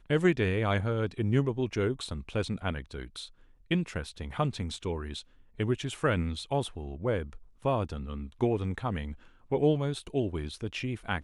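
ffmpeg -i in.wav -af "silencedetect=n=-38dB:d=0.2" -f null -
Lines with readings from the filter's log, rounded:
silence_start: 3.25
silence_end: 3.71 | silence_duration: 0.45
silence_start: 5.21
silence_end: 5.59 | silence_duration: 0.39
silence_start: 7.36
silence_end: 7.65 | silence_duration: 0.29
silence_start: 9.13
silence_end: 9.52 | silence_duration: 0.38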